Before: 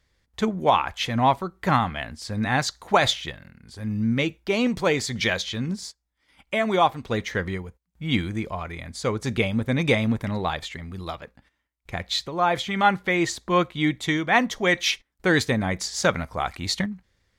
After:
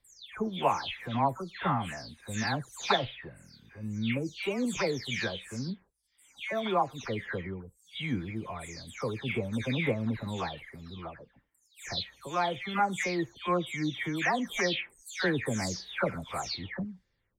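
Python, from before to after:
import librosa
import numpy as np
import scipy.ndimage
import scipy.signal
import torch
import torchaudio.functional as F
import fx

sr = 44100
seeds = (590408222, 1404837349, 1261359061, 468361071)

y = fx.spec_delay(x, sr, highs='early', ms=343)
y = y * librosa.db_to_amplitude(-7.5)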